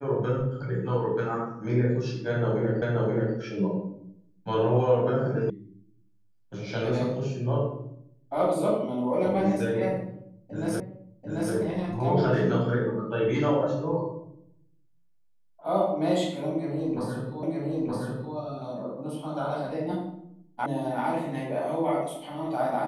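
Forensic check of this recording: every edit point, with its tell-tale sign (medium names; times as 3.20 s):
2.82 s: repeat of the last 0.53 s
5.50 s: sound stops dead
10.80 s: repeat of the last 0.74 s
17.43 s: repeat of the last 0.92 s
20.66 s: sound stops dead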